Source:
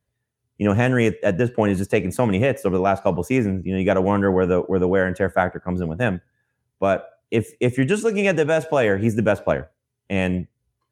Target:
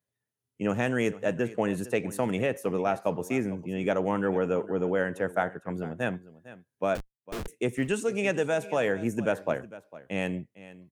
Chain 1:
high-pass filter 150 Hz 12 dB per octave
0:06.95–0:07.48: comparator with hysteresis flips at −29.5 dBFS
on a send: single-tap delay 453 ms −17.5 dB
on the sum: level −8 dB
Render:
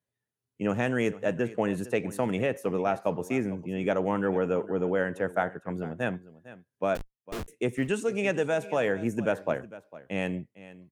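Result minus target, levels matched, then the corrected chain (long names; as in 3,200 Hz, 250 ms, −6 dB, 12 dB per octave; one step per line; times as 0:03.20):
8,000 Hz band −3.0 dB
high-pass filter 150 Hz 12 dB per octave
high-shelf EQ 5,700 Hz +4.5 dB
0:06.95–0:07.48: comparator with hysteresis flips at −29.5 dBFS
on a send: single-tap delay 453 ms −17.5 dB
on the sum: level −8 dB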